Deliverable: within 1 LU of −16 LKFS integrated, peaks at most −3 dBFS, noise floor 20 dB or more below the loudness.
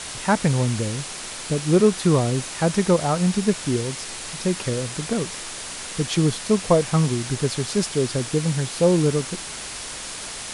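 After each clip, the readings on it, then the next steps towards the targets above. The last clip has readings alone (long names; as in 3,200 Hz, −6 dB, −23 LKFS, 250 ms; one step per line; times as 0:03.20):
background noise floor −34 dBFS; target noise floor −43 dBFS; integrated loudness −22.5 LKFS; sample peak −5.0 dBFS; target loudness −16.0 LKFS
→ broadband denoise 9 dB, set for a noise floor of −34 dBFS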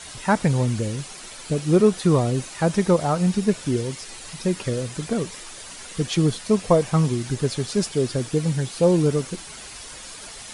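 background noise floor −39 dBFS; target noise floor −43 dBFS
→ broadband denoise 6 dB, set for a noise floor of −39 dBFS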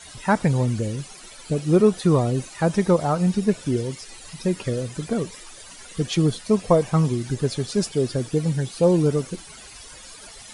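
background noise floor −43 dBFS; integrated loudness −22.5 LKFS; sample peak −5.0 dBFS; target loudness −16.0 LKFS
→ level +6.5 dB
brickwall limiter −3 dBFS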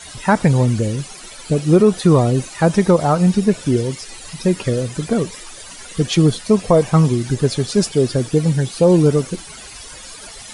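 integrated loudness −16.5 LKFS; sample peak −3.0 dBFS; background noise floor −37 dBFS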